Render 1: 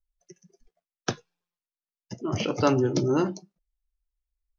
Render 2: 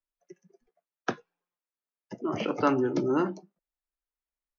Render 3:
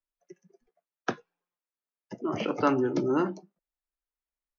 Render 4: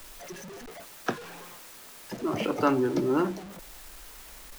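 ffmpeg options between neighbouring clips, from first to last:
ffmpeg -i in.wav -filter_complex "[0:a]acrossover=split=330|810|2900[link_01][link_02][link_03][link_04];[link_02]acompressor=threshold=-36dB:ratio=6[link_05];[link_01][link_05][link_03][link_04]amix=inputs=4:normalize=0,acrossover=split=200 2300:gain=0.0891 1 0.158[link_06][link_07][link_08];[link_06][link_07][link_08]amix=inputs=3:normalize=0,volume=2.5dB" out.wav
ffmpeg -i in.wav -af anull out.wav
ffmpeg -i in.wav -af "aeval=exprs='val(0)+0.5*0.0133*sgn(val(0))':channel_layout=same,acrusher=bits=9:dc=4:mix=0:aa=0.000001" out.wav

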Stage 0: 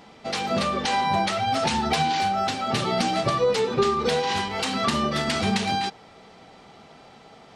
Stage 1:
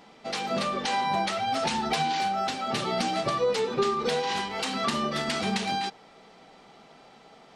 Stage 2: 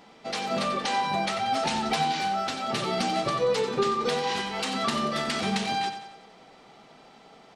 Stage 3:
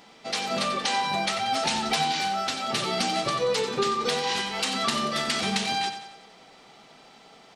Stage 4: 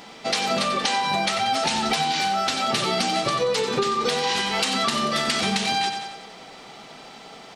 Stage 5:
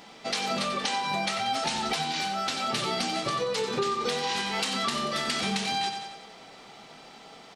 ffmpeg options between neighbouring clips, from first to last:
ffmpeg -i in.wav -af "equalizer=frequency=86:width_type=o:width=0.83:gain=-14.5,volume=-3.5dB" out.wav
ffmpeg -i in.wav -af "aecho=1:1:91|182|273|364|455|546:0.316|0.161|0.0823|0.0419|0.0214|0.0109" out.wav
ffmpeg -i in.wav -af "highshelf=frequency=2000:gain=7.5,volume=-1.5dB" out.wav
ffmpeg -i in.wav -af "acompressor=threshold=-29dB:ratio=6,volume=9dB" out.wav
ffmpeg -i in.wav -filter_complex "[0:a]asplit=2[link_01][link_02];[link_02]adelay=25,volume=-11dB[link_03];[link_01][link_03]amix=inputs=2:normalize=0,volume=-6dB" out.wav

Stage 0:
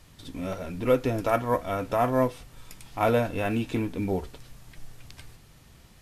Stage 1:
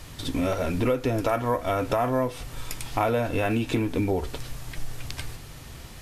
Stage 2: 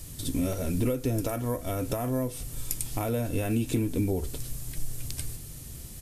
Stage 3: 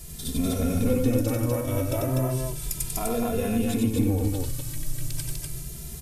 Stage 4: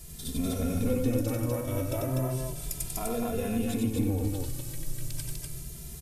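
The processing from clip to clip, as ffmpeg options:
ffmpeg -i in.wav -filter_complex "[0:a]asplit=2[link_01][link_02];[link_02]alimiter=limit=-22dB:level=0:latency=1:release=18,volume=-1.5dB[link_03];[link_01][link_03]amix=inputs=2:normalize=0,equalizer=frequency=190:width=6.1:gain=-9,acompressor=threshold=-28dB:ratio=6,volume=6.5dB" out.wav
ffmpeg -i in.wav -af "firequalizer=gain_entry='entry(170,0);entry(890,-13);entry(8800,8)':delay=0.05:min_phase=1" out.wav
ffmpeg -i in.wav -filter_complex "[0:a]asplit=2[link_01][link_02];[link_02]asoftclip=type=tanh:threshold=-25.5dB,volume=-3.5dB[link_03];[link_01][link_03]amix=inputs=2:normalize=0,aecho=1:1:93.29|247.8:0.708|0.794,asplit=2[link_04][link_05];[link_05]adelay=2.5,afreqshift=0.34[link_06];[link_04][link_06]amix=inputs=2:normalize=1" out.wav
ffmpeg -i in.wav -filter_complex "[0:a]asplit=5[link_01][link_02][link_03][link_04][link_05];[link_02]adelay=334,afreqshift=33,volume=-21dB[link_06];[link_03]adelay=668,afreqshift=66,volume=-26.4dB[link_07];[link_04]adelay=1002,afreqshift=99,volume=-31.7dB[link_08];[link_05]adelay=1336,afreqshift=132,volume=-37.1dB[link_09];[link_01][link_06][link_07][link_08][link_09]amix=inputs=5:normalize=0,volume=-4.5dB" out.wav

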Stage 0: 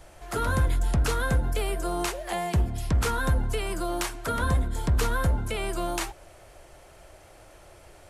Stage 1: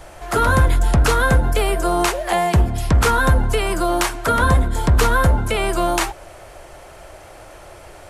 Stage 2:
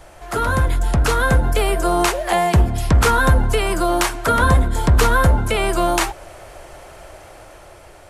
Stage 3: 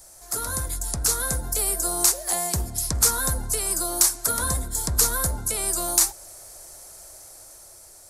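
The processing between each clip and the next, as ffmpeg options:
ffmpeg -i in.wav -af "equalizer=frequency=1000:width=0.54:gain=4,volume=8.5dB" out.wav
ffmpeg -i in.wav -af "dynaudnorm=framelen=480:gausssize=5:maxgain=11.5dB,volume=-3.5dB" out.wav
ffmpeg -i in.wav -af "aexciter=amount=14.4:drive=2.2:freq=4400,volume=-14dB" out.wav

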